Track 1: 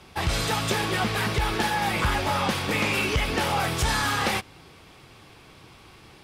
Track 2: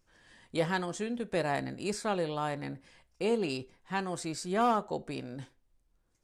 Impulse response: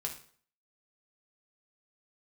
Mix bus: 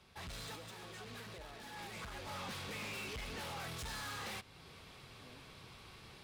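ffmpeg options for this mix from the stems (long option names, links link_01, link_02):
-filter_complex "[0:a]equalizer=frequency=315:width_type=o:width=0.33:gain=-7,equalizer=frequency=800:width_type=o:width=0.33:gain=-3,equalizer=frequency=4000:width_type=o:width=0.33:gain=4,asoftclip=type=tanh:threshold=-29.5dB,volume=-5.5dB,afade=type=in:start_time=1.69:duration=0.52:silence=0.354813[link_01];[1:a]highpass=280,alimiter=limit=-23.5dB:level=0:latency=1,volume=-14.5dB,asplit=3[link_02][link_03][link_04];[link_02]atrim=end=2.26,asetpts=PTS-STARTPTS,afade=type=out:start_time=2.256:duration=0.004:curve=hsin[link_05];[link_03]atrim=start=2.26:end=5.2,asetpts=PTS-STARTPTS,volume=0[link_06];[link_04]atrim=start=5.2,asetpts=PTS-STARTPTS,afade=type=in:duration=0.004:curve=hsin[link_07];[link_05][link_06][link_07]concat=n=3:v=0:a=1[link_08];[link_01][link_08]amix=inputs=2:normalize=0,alimiter=level_in=17.5dB:limit=-24dB:level=0:latency=1:release=346,volume=-17.5dB"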